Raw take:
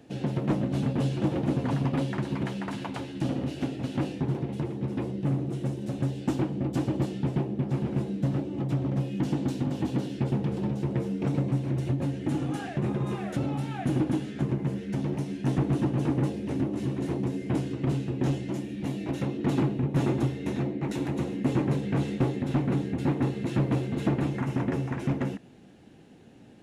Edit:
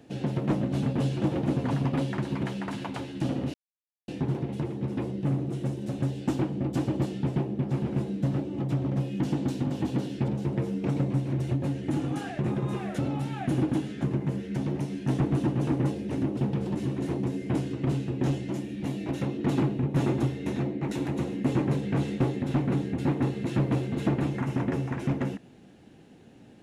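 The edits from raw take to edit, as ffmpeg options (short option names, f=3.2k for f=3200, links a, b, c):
-filter_complex "[0:a]asplit=6[a][b][c][d][e][f];[a]atrim=end=3.54,asetpts=PTS-STARTPTS,afade=t=out:st=3.536:d=0.004:c=hsin[g];[b]atrim=start=3.54:end=4.08,asetpts=PTS-STARTPTS,volume=0[h];[c]atrim=start=4.08:end=10.282,asetpts=PTS-STARTPTS,afade=t=in:d=0.004:c=hsin[i];[d]atrim=start=10.658:end=16.752[j];[e]atrim=start=10.278:end=10.662[k];[f]atrim=start=16.748[l];[g][h][i]concat=n=3:v=0:a=1[m];[m][j]acrossfade=d=0.004:c1=hsin:c2=hsin[n];[n][k]acrossfade=d=0.004:c1=hsin:c2=hsin[o];[o][l]acrossfade=d=0.004:c1=hsin:c2=hsin"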